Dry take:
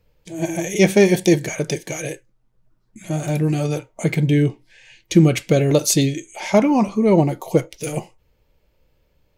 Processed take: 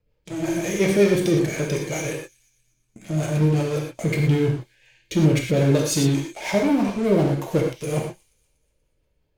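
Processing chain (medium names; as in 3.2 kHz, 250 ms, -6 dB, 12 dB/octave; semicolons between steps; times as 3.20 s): treble shelf 4.4 kHz -5 dB; in parallel at -6.5 dB: fuzz box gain 31 dB, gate -36 dBFS; on the sum: rotary cabinet horn 5.5 Hz; feedback echo behind a high-pass 240 ms, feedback 42%, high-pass 4 kHz, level -21.5 dB; gated-style reverb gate 140 ms flat, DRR 0.5 dB; trim -7.5 dB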